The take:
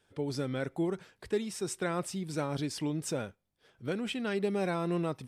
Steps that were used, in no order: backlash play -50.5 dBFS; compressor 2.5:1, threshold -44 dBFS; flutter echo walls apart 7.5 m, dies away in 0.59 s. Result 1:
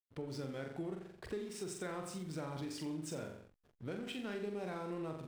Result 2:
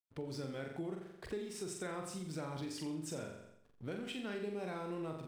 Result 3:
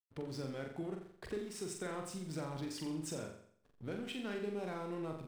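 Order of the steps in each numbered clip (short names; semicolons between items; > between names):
flutter echo > compressor > backlash; backlash > flutter echo > compressor; compressor > backlash > flutter echo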